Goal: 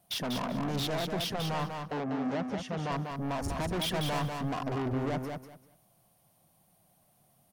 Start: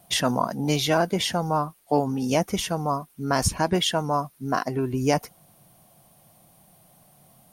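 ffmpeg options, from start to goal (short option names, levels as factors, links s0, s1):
-filter_complex "[0:a]afwtdn=0.0398,alimiter=limit=0.133:level=0:latency=1:release=149,asettb=1/sr,asplit=3[s0][s1][s2];[s0]atrim=end=3.494[s3];[s1]atrim=start=3.49:end=4.3,asetpts=PTS-STARTPTS,afade=t=in:d=0.004:c=qsin,afade=t=out:st=0.806:d=0.004:c=qsin,acontrast=43[s4];[s2]atrim=start=4.296[s5];[s3][s4]acrossfade=d=0.004:c1=hsin:c2=qsin[s6];[s6][s5]acrossfade=d=0.004:c1=qsin:c2=hsin,asoftclip=type=tanh:threshold=0.0168,asettb=1/sr,asplit=3[s7][s8][s9];[s7]atrim=end=1.824[s10];[s8]atrim=start=1.82:end=2.92,asetpts=PTS-STARTPTS,afade=t=in:d=0.004:c=qsin,afade=t=out:st=1.096:d=0.004:c=qsin,highpass=120,lowpass=5400[s11];[s9]atrim=start=2.916[s12];[s10][s11]acrossfade=d=0.004:c1=hsin:c2=qsin[s13];[s13][s12]acrossfade=d=0.004:c1=qsin:c2=hsin,aecho=1:1:194|388|582:0.562|0.118|0.0248,volume=1.68"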